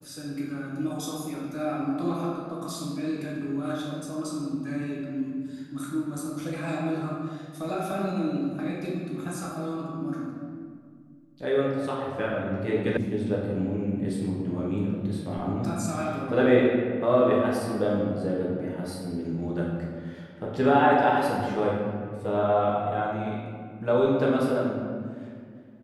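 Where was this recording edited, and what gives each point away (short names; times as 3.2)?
12.97 sound cut off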